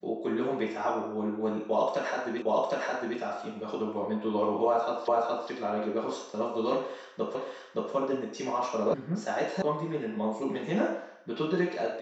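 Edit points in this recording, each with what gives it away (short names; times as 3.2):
2.42 repeat of the last 0.76 s
5.08 repeat of the last 0.42 s
7.35 repeat of the last 0.57 s
8.94 sound cut off
9.62 sound cut off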